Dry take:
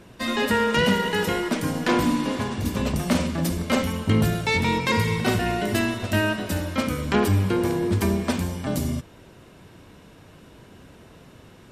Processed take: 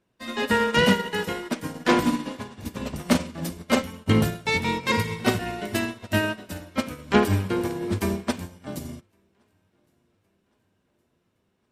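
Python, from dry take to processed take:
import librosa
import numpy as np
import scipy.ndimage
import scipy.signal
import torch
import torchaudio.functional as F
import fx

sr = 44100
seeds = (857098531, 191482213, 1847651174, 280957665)

p1 = fx.low_shelf(x, sr, hz=120.0, db=-5.0)
p2 = p1 + fx.echo_feedback(p1, sr, ms=1115, feedback_pct=52, wet_db=-19, dry=0)
p3 = fx.upward_expand(p2, sr, threshold_db=-37.0, expansion=2.5)
y = p3 * librosa.db_to_amplitude(4.5)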